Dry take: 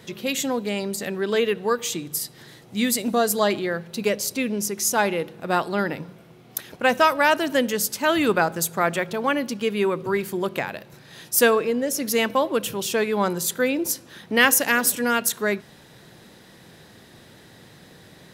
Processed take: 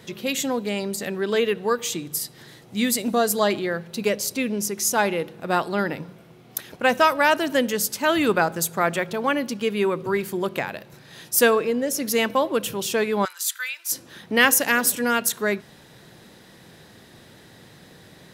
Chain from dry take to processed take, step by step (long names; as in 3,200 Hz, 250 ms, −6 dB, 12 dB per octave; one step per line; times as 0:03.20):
0:13.25–0:13.92: high-pass filter 1,400 Hz 24 dB per octave